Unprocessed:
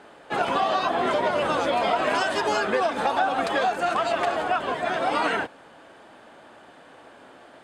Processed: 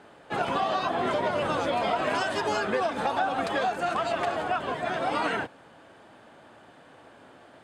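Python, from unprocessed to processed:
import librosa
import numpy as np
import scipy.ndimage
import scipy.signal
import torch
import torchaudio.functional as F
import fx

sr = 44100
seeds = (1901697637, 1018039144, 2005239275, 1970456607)

y = fx.peak_eq(x, sr, hz=110.0, db=7.5, octaves=1.6)
y = y * 10.0 ** (-4.0 / 20.0)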